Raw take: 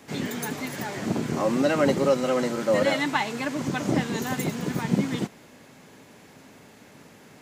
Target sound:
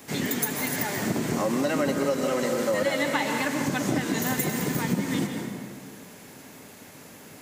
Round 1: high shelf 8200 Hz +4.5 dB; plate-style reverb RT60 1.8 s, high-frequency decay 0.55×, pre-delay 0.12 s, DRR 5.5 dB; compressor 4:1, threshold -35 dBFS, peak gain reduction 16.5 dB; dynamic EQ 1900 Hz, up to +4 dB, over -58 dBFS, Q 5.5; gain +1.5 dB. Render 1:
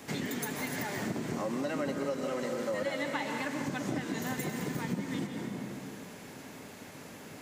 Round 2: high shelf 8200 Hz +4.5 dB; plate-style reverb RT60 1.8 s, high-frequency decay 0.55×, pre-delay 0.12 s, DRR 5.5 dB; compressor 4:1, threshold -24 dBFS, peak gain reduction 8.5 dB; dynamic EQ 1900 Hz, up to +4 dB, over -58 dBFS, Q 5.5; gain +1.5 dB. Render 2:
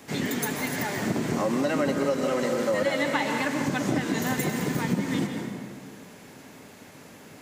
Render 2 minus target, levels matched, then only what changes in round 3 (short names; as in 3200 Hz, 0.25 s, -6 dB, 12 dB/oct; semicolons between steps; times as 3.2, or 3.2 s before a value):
8000 Hz band -3.5 dB
change: high shelf 8200 Hz +14 dB